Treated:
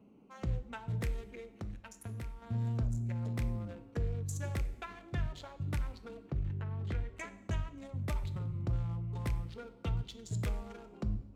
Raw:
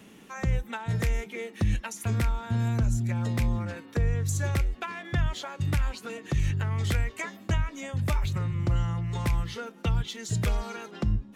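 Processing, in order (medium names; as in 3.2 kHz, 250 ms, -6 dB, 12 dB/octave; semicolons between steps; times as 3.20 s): local Wiener filter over 25 samples; 1.21–2.42 s: compression 2:1, threshold -37 dBFS, peak gain reduction 9 dB; 6.21–7.17 s: tape spacing loss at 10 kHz 22 dB; two-slope reverb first 0.73 s, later 2.3 s, DRR 10 dB; trim -8.5 dB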